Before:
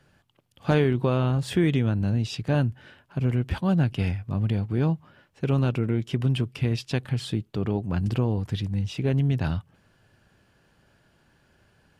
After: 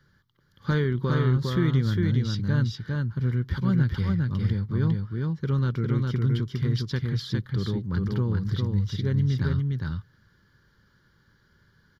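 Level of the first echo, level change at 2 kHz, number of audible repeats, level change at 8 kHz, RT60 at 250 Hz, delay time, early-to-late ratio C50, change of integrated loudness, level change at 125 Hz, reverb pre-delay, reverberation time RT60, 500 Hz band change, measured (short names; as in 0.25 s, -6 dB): -3.0 dB, -0.5 dB, 1, n/a, none, 0.406 s, none, 0.0 dB, +1.0 dB, none, none, -4.5 dB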